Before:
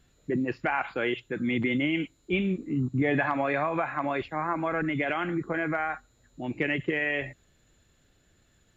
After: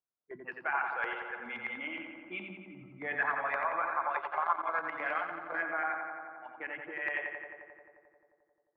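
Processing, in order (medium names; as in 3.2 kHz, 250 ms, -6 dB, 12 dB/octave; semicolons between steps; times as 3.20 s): spectral noise reduction 20 dB; level-controlled noise filter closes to 820 Hz, open at -25.5 dBFS; 6.55–6.99 s: treble shelf 2 kHz -11 dB; LFO band-pass saw up 9.6 Hz 890–1800 Hz; filtered feedback delay 88 ms, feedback 81%, low-pass 2.9 kHz, level -5 dB; 4.10–5.61 s: transient shaper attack +6 dB, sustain -9 dB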